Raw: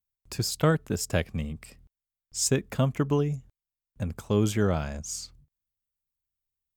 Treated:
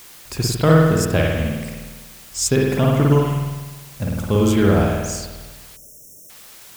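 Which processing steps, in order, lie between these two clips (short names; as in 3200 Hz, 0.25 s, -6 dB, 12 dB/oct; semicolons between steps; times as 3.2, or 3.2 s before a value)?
spring tank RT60 1.3 s, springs 50 ms, chirp 50 ms, DRR -3 dB; requantised 8-bit, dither triangular; spectral delete 5.77–6.3, 670–5300 Hz; gain +5.5 dB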